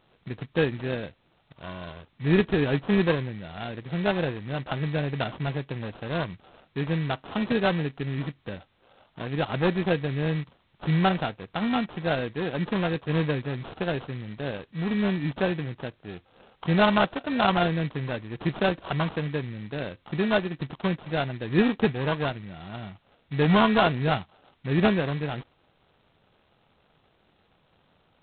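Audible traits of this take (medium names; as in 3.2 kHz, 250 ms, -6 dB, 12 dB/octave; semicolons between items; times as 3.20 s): aliases and images of a low sample rate 2.1 kHz, jitter 0%; G.726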